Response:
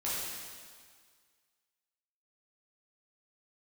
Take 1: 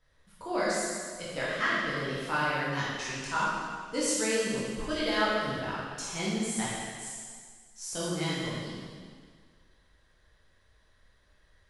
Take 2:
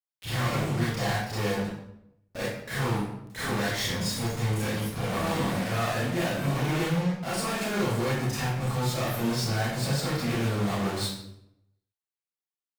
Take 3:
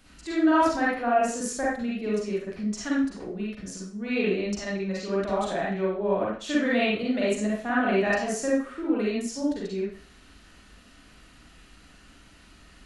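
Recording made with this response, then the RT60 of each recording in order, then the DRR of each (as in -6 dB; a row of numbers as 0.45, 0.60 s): 1; 1.8, 0.80, 0.45 s; -9.0, -10.0, -6.5 dB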